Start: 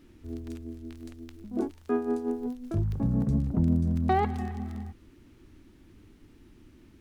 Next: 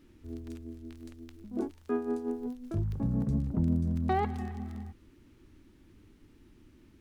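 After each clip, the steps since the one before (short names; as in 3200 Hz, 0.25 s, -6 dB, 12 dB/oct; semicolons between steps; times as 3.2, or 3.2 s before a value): notch 710 Hz, Q 16; gain -3.5 dB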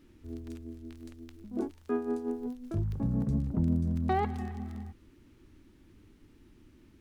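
nothing audible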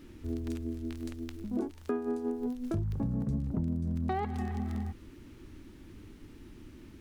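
compressor 5:1, threshold -38 dBFS, peak gain reduction 13.5 dB; gain +8 dB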